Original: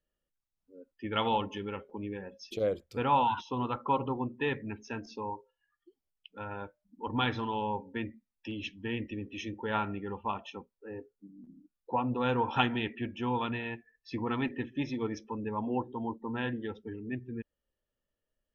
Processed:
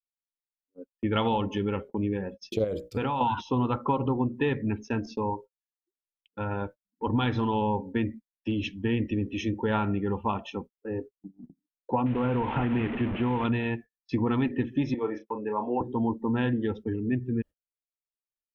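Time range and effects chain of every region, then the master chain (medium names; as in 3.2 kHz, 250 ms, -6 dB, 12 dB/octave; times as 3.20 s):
2.64–3.21 s: treble shelf 2.6 kHz +5.5 dB + hum notches 60/120/180/240/300/360/420/480/540/600 Hz + compression 5:1, threshold -33 dBFS
12.06–13.45 s: one-bit delta coder 16 kbps, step -35 dBFS + compression 2.5:1, threshold -32 dBFS
14.94–15.81 s: three-band isolator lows -20 dB, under 360 Hz, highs -22 dB, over 2.5 kHz + doubling 33 ms -8 dB
whole clip: gate -49 dBFS, range -39 dB; bass shelf 490 Hz +9 dB; compression, threshold -26 dBFS; trim +4 dB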